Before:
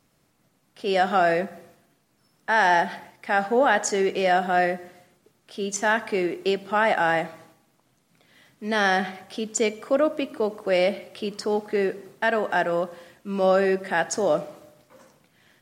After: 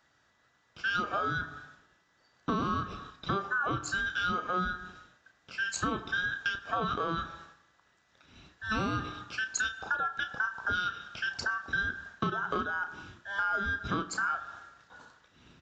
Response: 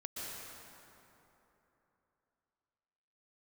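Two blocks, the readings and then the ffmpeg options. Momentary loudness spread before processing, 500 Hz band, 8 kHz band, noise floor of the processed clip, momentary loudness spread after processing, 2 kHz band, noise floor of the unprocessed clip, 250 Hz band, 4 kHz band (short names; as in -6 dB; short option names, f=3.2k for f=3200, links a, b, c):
13 LU, -19.0 dB, -8.5 dB, -70 dBFS, 11 LU, -4.5 dB, -67 dBFS, -9.5 dB, -5.5 dB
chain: -filter_complex "[0:a]afftfilt=real='real(if(between(b,1,1012),(2*floor((b-1)/92)+1)*92-b,b),0)':imag='imag(if(between(b,1,1012),(2*floor((b-1)/92)+1)*92-b,b),0)*if(between(b,1,1012),-1,1)':win_size=2048:overlap=0.75,highpass=50,bass=f=250:g=7,treble=f=4k:g=-4,bandreject=f=1.8k:w=6.7,acompressor=threshold=-28dB:ratio=12,asplit=2[a][b];[b]adelay=33,volume=-9.5dB[c];[a][c]amix=inputs=2:normalize=0,aresample=16000,aresample=44100"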